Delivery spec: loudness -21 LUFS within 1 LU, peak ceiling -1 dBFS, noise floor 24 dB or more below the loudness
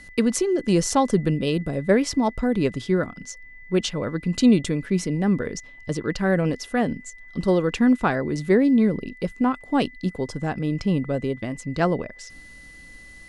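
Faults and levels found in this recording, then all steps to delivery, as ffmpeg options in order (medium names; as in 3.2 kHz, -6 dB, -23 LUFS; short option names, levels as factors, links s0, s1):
steady tone 2 kHz; tone level -44 dBFS; loudness -23.0 LUFS; peak level -6.0 dBFS; loudness target -21.0 LUFS
-> -af "bandreject=f=2000:w=30"
-af "volume=1.26"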